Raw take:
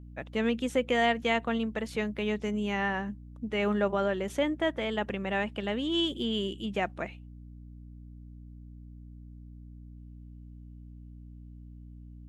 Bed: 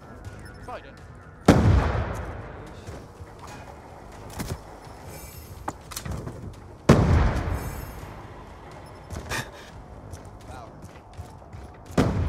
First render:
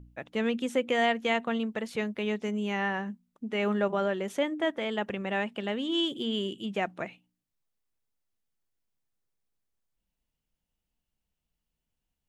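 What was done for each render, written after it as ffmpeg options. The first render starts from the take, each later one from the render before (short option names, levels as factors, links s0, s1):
-af "bandreject=f=60:t=h:w=4,bandreject=f=120:t=h:w=4,bandreject=f=180:t=h:w=4,bandreject=f=240:t=h:w=4,bandreject=f=300:t=h:w=4"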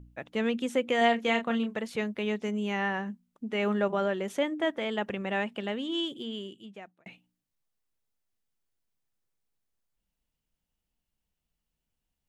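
-filter_complex "[0:a]asettb=1/sr,asplit=3[s0][s1][s2];[s0]atrim=end=0.984[s3];[s1]atrim=start=0.98:end=1.78,asetpts=PTS-STARTPTS,afade=t=in:d=0.004:c=qsin,afade=t=out:st=0.796:d=0.004:c=qsin,asplit=2[s4][s5];[s5]adelay=30,volume=0.447[s6];[s4][s6]amix=inputs=2:normalize=0,atrim=end_sample=35280[s7];[s2]atrim=start=1.776[s8];[s3][s7]acrossfade=d=0.004:c1=hsin:c2=qsin[s9];[s9][s8]acrossfade=d=0.004:c1=qsin:c2=hsin,asplit=2[s10][s11];[s10]atrim=end=7.06,asetpts=PTS-STARTPTS,afade=t=out:st=5.52:d=1.54[s12];[s11]atrim=start=7.06,asetpts=PTS-STARTPTS,afade=t=in:d=0.004:c=hsin[s13];[s12][s13]concat=n=2:v=0:a=1"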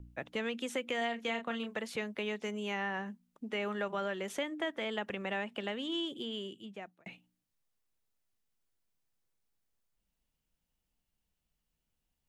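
-filter_complex "[0:a]acrossover=split=360|1100[s0][s1][s2];[s0]acompressor=threshold=0.00631:ratio=4[s3];[s1]acompressor=threshold=0.0112:ratio=4[s4];[s2]acompressor=threshold=0.0141:ratio=4[s5];[s3][s4][s5]amix=inputs=3:normalize=0"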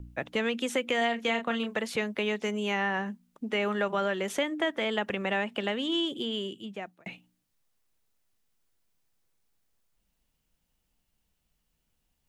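-af "volume=2.24"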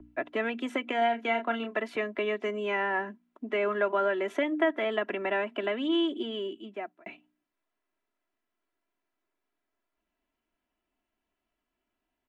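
-filter_complex "[0:a]acrossover=split=190 2600:gain=0.126 1 0.112[s0][s1][s2];[s0][s1][s2]amix=inputs=3:normalize=0,aecho=1:1:3:0.74"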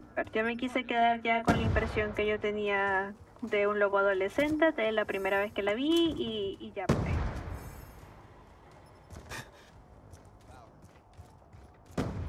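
-filter_complex "[1:a]volume=0.251[s0];[0:a][s0]amix=inputs=2:normalize=0"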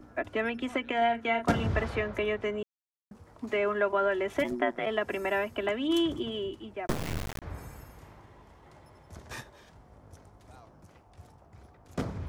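-filter_complex "[0:a]asplit=3[s0][s1][s2];[s0]afade=t=out:st=4.43:d=0.02[s3];[s1]aeval=exprs='val(0)*sin(2*PI*60*n/s)':c=same,afade=t=in:st=4.43:d=0.02,afade=t=out:st=4.85:d=0.02[s4];[s2]afade=t=in:st=4.85:d=0.02[s5];[s3][s4][s5]amix=inputs=3:normalize=0,asettb=1/sr,asplit=3[s6][s7][s8];[s6]atrim=end=6.874[s9];[s7]atrim=start=6.87:end=7.42,asetpts=PTS-STARTPTS,afade=t=in:d=0.004:c=qsin,afade=t=out:st=0.546:d=0.004:c=qsin,acrusher=bits=3:dc=4:mix=0:aa=0.000001[s10];[s8]atrim=start=7.416[s11];[s9][s10]acrossfade=d=0.004:c1=hsin:c2=qsin[s12];[s12][s11]acrossfade=d=0.004:c1=qsin:c2=hsin,asplit=3[s13][s14][s15];[s13]atrim=end=2.63,asetpts=PTS-STARTPTS,afade=t=out:st=2.626:d=0.004:c=hsin[s16];[s14]atrim=start=2.63:end=3.11,asetpts=PTS-STARTPTS,volume=0[s17];[s15]atrim=start=3.11,asetpts=PTS-STARTPTS,afade=t=in:d=0.004:c=hsin[s18];[s16][s17][s18]concat=n=3:v=0:a=1"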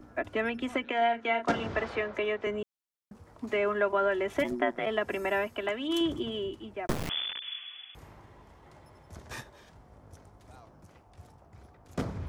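-filter_complex "[0:a]asettb=1/sr,asplit=3[s0][s1][s2];[s0]atrim=end=0.844[s3];[s1]atrim=start=0.84:end=2.47,asetpts=PTS-STARTPTS,afade=t=in:d=0.004:c=qsin,afade=t=out:st=1.626:d=0.004:c=qsin,acrossover=split=230 7700:gain=0.224 1 0.112[s4][s5][s6];[s4][s5][s6]amix=inputs=3:normalize=0[s7];[s2]atrim=start=2.466[s8];[s3][s7]acrossfade=d=0.004:c1=hsin:c2=qsin[s9];[s9][s8]acrossfade=d=0.004:c1=qsin:c2=hsin,asettb=1/sr,asplit=3[s10][s11][s12];[s10]atrim=end=5.474[s13];[s11]atrim=start=5.47:end=6.01,asetpts=PTS-STARTPTS,afade=t=in:d=0.004:c=qsin,afade=t=out:st=0.536:d=0.004:c=qsin,lowshelf=f=370:g=-6.5[s14];[s12]atrim=start=6.006[s15];[s13][s14]acrossfade=d=0.004:c1=hsin:c2=qsin[s16];[s16][s15]acrossfade=d=0.004:c1=qsin:c2=hsin,asettb=1/sr,asplit=3[s17][s18][s19];[s17]atrim=end=7.094[s20];[s18]atrim=start=7.09:end=7.95,asetpts=PTS-STARTPTS,afade=t=in:d=0.004:c=qsin,afade=t=out:st=0.856:d=0.004:c=qsin,lowpass=f=3000:t=q:w=0.5098,lowpass=f=3000:t=q:w=0.6013,lowpass=f=3000:t=q:w=0.9,lowpass=f=3000:t=q:w=2.563,afreqshift=-3500[s21];[s19]atrim=start=7.946[s22];[s20][s21]acrossfade=d=0.004:c1=hsin:c2=qsin[s23];[s23][s22]acrossfade=d=0.004:c1=qsin:c2=hsin"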